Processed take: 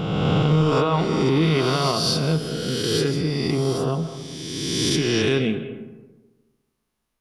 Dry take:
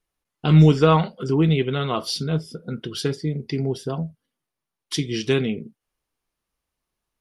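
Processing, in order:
peak hold with a rise ahead of every peak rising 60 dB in 2.03 s
brickwall limiter −11 dBFS, peak gain reduction 9.5 dB
comb and all-pass reverb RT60 1.3 s, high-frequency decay 0.4×, pre-delay 120 ms, DRR 11 dB

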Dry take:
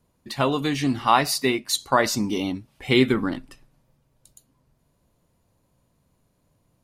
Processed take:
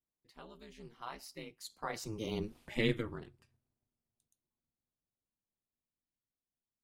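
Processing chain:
source passing by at 0:02.55, 17 m/s, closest 1.1 metres
ring modulation 110 Hz
level +3 dB

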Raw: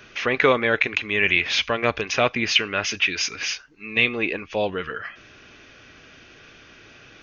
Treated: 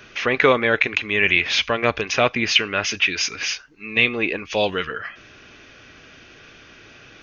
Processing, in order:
0:04.45–0:04.85: high-shelf EQ 2,400 Hz +12 dB
level +2 dB

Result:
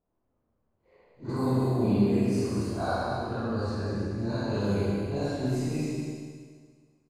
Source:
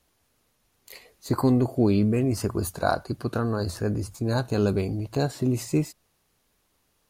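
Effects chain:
random phases in long frames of 200 ms
low-pass that shuts in the quiet parts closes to 800 Hz, open at −19 dBFS
single-tap delay 199 ms −7 dB
four-comb reverb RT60 1.7 s, combs from 31 ms, DRR −3 dB
level −8 dB

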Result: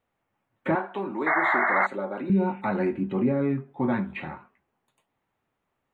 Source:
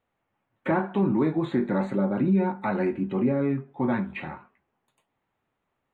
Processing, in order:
0:02.31–0:02.58: healed spectral selection 1,500–3,600 Hz before
0:00.75–0:02.30: high-pass filter 450 Hz 12 dB per octave
0:01.26–0:01.87: sound drawn into the spectrogram noise 600–2,200 Hz −23 dBFS

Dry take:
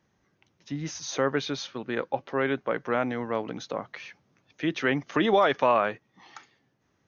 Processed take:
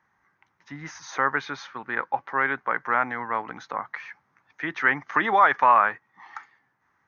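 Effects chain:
flat-topped bell 1,300 Hz +15.5 dB
level −7 dB

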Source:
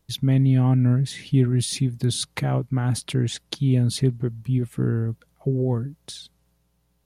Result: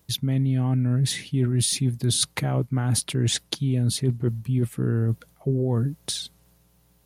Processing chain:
high-pass filter 50 Hz
high-shelf EQ 9,600 Hz +7.5 dB
reversed playback
downward compressor, threshold −27 dBFS, peak gain reduction 13 dB
reversed playback
level +7 dB

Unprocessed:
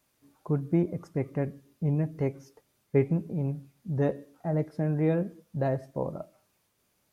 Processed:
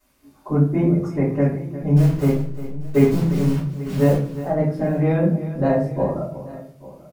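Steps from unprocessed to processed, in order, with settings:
0:01.96–0:04.16: hold until the input has moved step −38 dBFS
multi-tap delay 355/840 ms −14/−18.5 dB
rectangular room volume 41 cubic metres, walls mixed, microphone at 2.8 metres
level −4 dB

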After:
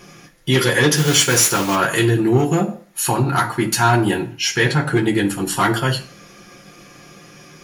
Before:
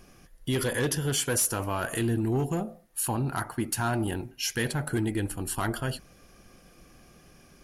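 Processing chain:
0:00.94–0:01.75: noise that follows the level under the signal 11 dB
0:04.38–0:05.03: high-shelf EQ 5,900 Hz −10.5 dB
convolution reverb RT60 0.40 s, pre-delay 3 ms, DRR −1 dB
level +5.5 dB

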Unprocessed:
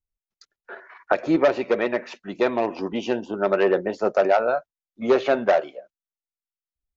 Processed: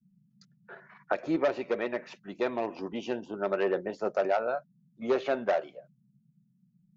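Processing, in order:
noise in a band 130–210 Hz −57 dBFS
level −8.5 dB

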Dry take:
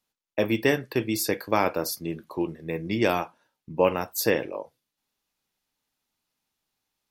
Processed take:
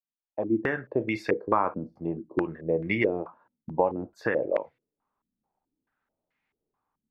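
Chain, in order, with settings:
fade in at the beginning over 1.32 s
downward compressor 10 to 1, threshold −24 dBFS, peak gain reduction 10 dB
low-pass on a step sequencer 4.6 Hz 230–2,100 Hz

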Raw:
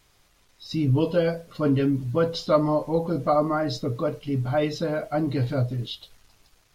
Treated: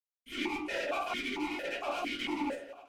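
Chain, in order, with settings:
tilt shelving filter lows −3.5 dB
in parallel at +0.5 dB: downward compressor 6 to 1, threshold −31 dBFS, peak gain reduction 15 dB
on the sum: harmonic generator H 8 −9 dB, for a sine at −7 dBFS
on a send: delay with a low-pass on its return 230 ms, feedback 81%, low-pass 490 Hz, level −20 dB
on the sum: bit-depth reduction 6 bits, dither none
wrap-around overflow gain 17.5 dB
flanger 1.4 Hz, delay 5.5 ms, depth 8.9 ms, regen +42%
rectangular room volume 100 cubic metres, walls mixed, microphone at 1.4 metres
wrong playback speed 33 rpm record played at 78 rpm
formant filter that steps through the vowels 4.4 Hz

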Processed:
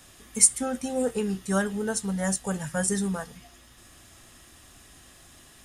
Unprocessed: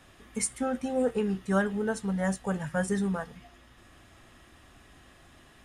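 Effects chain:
bass and treble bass +1 dB, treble +14 dB

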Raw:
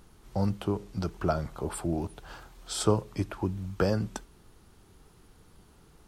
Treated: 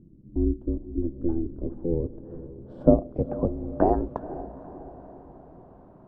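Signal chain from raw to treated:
low-pass filter sweep 150 Hz → 790 Hz, 0:01.02–0:04.12
ring modulation 170 Hz
feedback delay with all-pass diffusion 485 ms, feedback 53%, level −14 dB
level +5 dB

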